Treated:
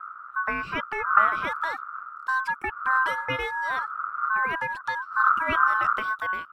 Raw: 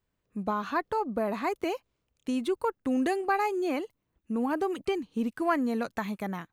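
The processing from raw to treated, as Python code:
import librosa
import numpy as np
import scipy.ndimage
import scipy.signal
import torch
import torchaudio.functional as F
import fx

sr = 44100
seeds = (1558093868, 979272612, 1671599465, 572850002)

y = fx.dmg_wind(x, sr, seeds[0], corner_hz=140.0, level_db=-40.0)
y = fx.bass_treble(y, sr, bass_db=14, treble_db=-3)
y = y * np.sin(2.0 * np.pi * 1300.0 * np.arange(len(y)) / sr)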